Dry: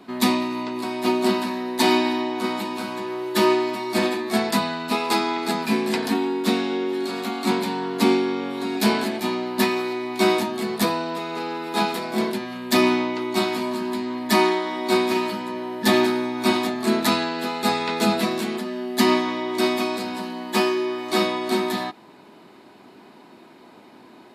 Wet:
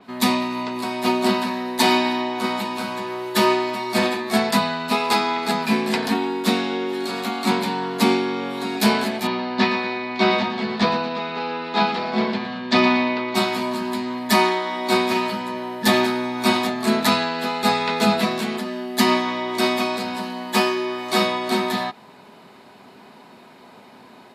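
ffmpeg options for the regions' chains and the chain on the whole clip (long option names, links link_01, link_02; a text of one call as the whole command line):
ffmpeg -i in.wav -filter_complex "[0:a]asettb=1/sr,asplit=3[link_01][link_02][link_03];[link_01]atrim=end=9.274[link_04];[link_02]atrim=start=9.27:end=13.35,asetpts=PTS-STARTPTS,afade=type=in:duration=0.004:curve=qsin,afade=type=out:start_time=4.076:duration=0.004:curve=qsin,lowpass=frequency=4800:width=0.5412,lowpass=frequency=4800:width=1.3066,asoftclip=type=hard:threshold=-7.5dB,aecho=1:1:117|234|351|468|585:0.299|0.131|0.0578|0.0254|0.0112,atrim=end_sample=179928[link_05];[link_03]atrim=start=13.346[link_06];[link_04][link_05]acrossfade=duration=0.004:curve1=hsin:curve2=qsin[link_07];[link_07][link_06]acrossfade=duration=0.004:curve1=qsin:curve2=hsin,equalizer=frequency=320:width_type=o:width=0.27:gain=-14.5,dynaudnorm=framelen=160:gausssize=3:maxgain=3.5dB,adynamicequalizer=threshold=0.0158:dfrequency=5800:dqfactor=0.7:tfrequency=5800:tqfactor=0.7:attack=5:release=100:ratio=0.375:range=3:mode=cutabove:tftype=highshelf" out.wav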